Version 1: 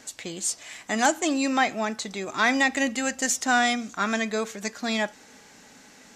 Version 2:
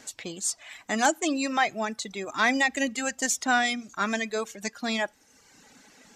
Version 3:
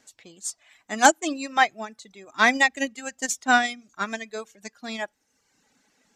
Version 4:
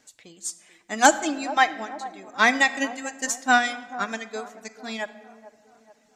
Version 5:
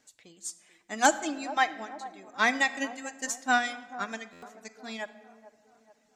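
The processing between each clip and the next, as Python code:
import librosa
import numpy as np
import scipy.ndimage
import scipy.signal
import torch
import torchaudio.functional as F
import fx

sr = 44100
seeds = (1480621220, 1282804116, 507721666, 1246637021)

y1 = fx.dereverb_blind(x, sr, rt60_s=1.0)
y1 = y1 * librosa.db_to_amplitude(-1.0)
y2 = fx.upward_expand(y1, sr, threshold_db=-32.0, expansion=2.5)
y2 = y2 * librosa.db_to_amplitude(8.5)
y3 = fx.echo_wet_bandpass(y2, sr, ms=437, feedback_pct=47, hz=510.0, wet_db=-13.5)
y3 = fx.room_shoebox(y3, sr, seeds[0], volume_m3=1400.0, walls='mixed', distance_m=0.43)
y4 = fx.buffer_glitch(y3, sr, at_s=(4.32,), block=512, repeats=8)
y4 = y4 * librosa.db_to_amplitude(-6.0)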